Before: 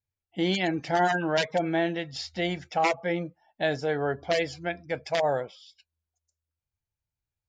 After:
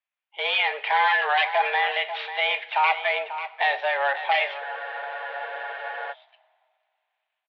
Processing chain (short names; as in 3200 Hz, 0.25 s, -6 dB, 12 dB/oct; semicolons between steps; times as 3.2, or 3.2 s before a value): median filter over 9 samples; bell 2500 Hz +9.5 dB 2.2 oct; AGC gain up to 10.5 dB; limiter -10.5 dBFS, peak gain reduction 8.5 dB; hard clip -15.5 dBFS, distortion -16 dB; mistuned SSB +130 Hz 490–3600 Hz; on a send: echo 0.541 s -11.5 dB; on the sum: two-slope reverb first 0.53 s, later 2.4 s, from -17 dB, DRR 12 dB; spectral freeze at 4.63, 1.48 s